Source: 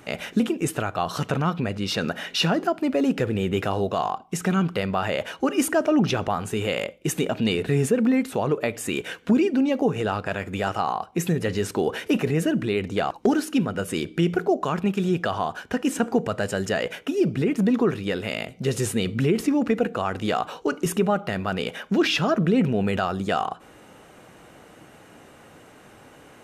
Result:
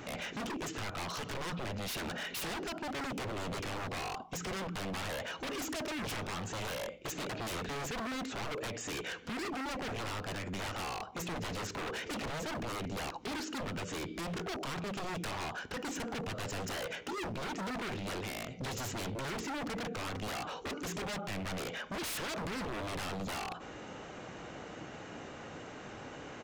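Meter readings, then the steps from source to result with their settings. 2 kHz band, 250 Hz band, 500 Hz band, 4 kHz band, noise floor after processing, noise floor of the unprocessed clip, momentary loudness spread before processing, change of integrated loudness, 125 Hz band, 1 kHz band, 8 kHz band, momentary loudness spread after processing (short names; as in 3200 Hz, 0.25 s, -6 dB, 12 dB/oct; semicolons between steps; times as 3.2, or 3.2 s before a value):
-9.0 dB, -18.0 dB, -16.0 dB, -9.0 dB, -47 dBFS, -50 dBFS, 7 LU, -14.5 dB, -15.0 dB, -11.5 dB, -8.0 dB, 5 LU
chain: hard clip -18 dBFS, distortion -14 dB; downsampling 16000 Hz; wavefolder -28.5 dBFS; limiter -36 dBFS, peak gain reduction 7.5 dB; gain +2.5 dB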